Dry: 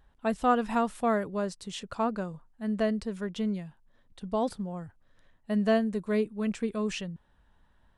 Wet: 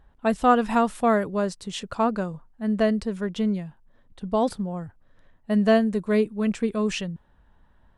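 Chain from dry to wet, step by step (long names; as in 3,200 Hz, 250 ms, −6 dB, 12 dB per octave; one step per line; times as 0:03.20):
one half of a high-frequency compander decoder only
level +6 dB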